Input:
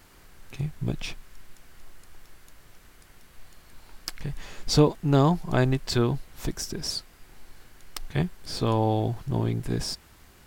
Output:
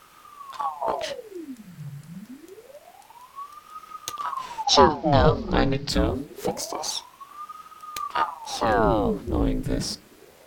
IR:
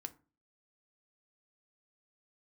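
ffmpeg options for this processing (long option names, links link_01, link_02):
-filter_complex "[0:a]asettb=1/sr,asplit=3[link_01][link_02][link_03];[link_01]atrim=end=4.644[link_04];[link_02]atrim=start=4.64:end=5.89,asetpts=PTS-STARTPTS,afade=type=in:duration=0.004:curve=qsin,afade=type=out:start_time=1.246:duration=0.004:curve=qsin,highshelf=frequency=6700:width_type=q:width=3:gain=-13.5[link_05];[link_03]atrim=start=5.886[link_06];[link_04][link_05]acrossfade=duration=0.004:curve1=hsin:curve2=qsin[link_07];[link_07][link_06]acrossfade=duration=0.004:curve1=qsin:curve2=hsin,asplit=2[link_08][link_09];[1:a]atrim=start_sample=2205[link_10];[link_09][link_10]afir=irnorm=-1:irlink=0,volume=9.5dB[link_11];[link_08][link_11]amix=inputs=2:normalize=0,aeval=exprs='val(0)*sin(2*PI*700*n/s+700*0.8/0.26*sin(2*PI*0.26*n/s))':channel_layout=same,volume=-4.5dB"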